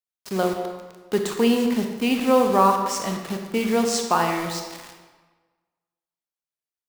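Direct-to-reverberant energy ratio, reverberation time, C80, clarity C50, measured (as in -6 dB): 3.5 dB, 1.4 s, 6.5 dB, 5.0 dB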